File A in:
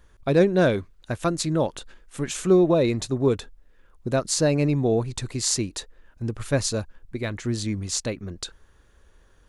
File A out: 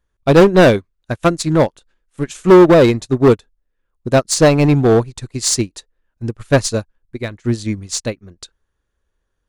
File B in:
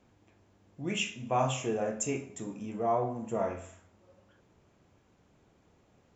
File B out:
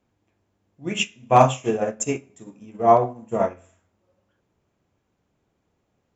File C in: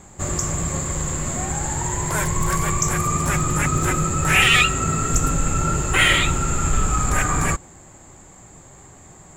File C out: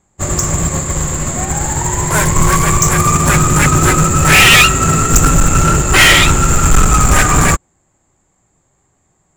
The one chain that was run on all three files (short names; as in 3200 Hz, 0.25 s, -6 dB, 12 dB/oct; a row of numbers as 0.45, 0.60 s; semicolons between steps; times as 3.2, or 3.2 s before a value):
overloaded stage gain 18.5 dB; upward expander 2.5:1, over -40 dBFS; normalise peaks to -3 dBFS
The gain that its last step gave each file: +15.5, +15.5, +15.5 dB